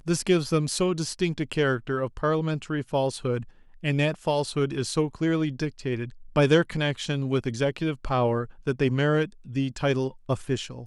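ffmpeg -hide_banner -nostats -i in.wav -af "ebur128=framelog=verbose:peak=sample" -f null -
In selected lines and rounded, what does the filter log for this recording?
Integrated loudness:
  I:         -26.4 LUFS
  Threshold: -36.4 LUFS
Loudness range:
  LRA:         2.0 LU
  Threshold: -46.5 LUFS
  LRA low:   -27.5 LUFS
  LRA high:  -25.5 LUFS
Sample peak:
  Peak:       -8.6 dBFS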